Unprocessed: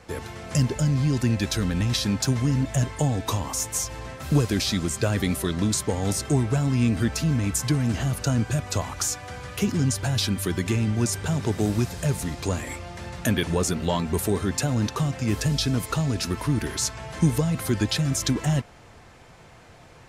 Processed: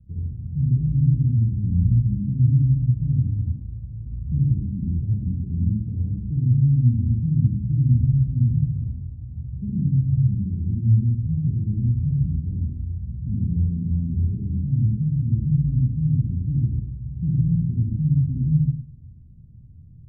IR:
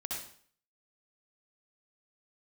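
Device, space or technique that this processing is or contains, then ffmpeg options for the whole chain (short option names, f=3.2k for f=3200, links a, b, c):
club heard from the street: -filter_complex "[0:a]alimiter=limit=-17dB:level=0:latency=1,lowpass=f=170:w=0.5412,lowpass=f=170:w=1.3066[a];[1:a]atrim=start_sample=2205[b];[a][b]afir=irnorm=-1:irlink=0,volume=7.5dB"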